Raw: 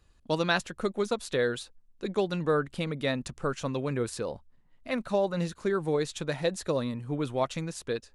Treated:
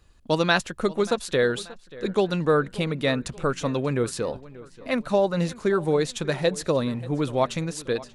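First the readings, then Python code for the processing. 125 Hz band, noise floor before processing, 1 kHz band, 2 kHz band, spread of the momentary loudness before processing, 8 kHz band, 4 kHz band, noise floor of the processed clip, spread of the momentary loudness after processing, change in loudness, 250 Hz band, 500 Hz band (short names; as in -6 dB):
+5.5 dB, -63 dBFS, +5.5 dB, +5.5 dB, 7 LU, +5.5 dB, +5.5 dB, -51 dBFS, 8 LU, +5.5 dB, +5.5 dB, +5.5 dB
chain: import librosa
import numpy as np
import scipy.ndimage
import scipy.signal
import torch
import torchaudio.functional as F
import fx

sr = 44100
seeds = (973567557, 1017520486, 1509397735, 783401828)

y = fx.echo_filtered(x, sr, ms=584, feedback_pct=46, hz=4600.0, wet_db=-19)
y = y * 10.0 ** (5.5 / 20.0)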